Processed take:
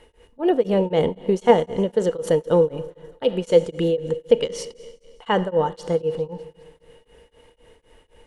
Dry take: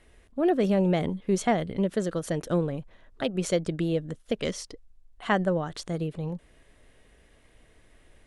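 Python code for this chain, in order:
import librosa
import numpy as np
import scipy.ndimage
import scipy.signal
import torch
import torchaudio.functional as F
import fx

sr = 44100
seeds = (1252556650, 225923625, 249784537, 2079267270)

p1 = fx.level_steps(x, sr, step_db=10)
p2 = x + (p1 * librosa.db_to_amplitude(-2.0))
p3 = fx.small_body(p2, sr, hz=(480.0, 890.0, 2900.0), ring_ms=60, db=17)
p4 = p3 + fx.echo_thinned(p3, sr, ms=204, feedback_pct=61, hz=400.0, wet_db=-23.0, dry=0)
p5 = fx.rev_schroeder(p4, sr, rt60_s=1.6, comb_ms=26, drr_db=14.5)
y = p5 * np.abs(np.cos(np.pi * 3.9 * np.arange(len(p5)) / sr))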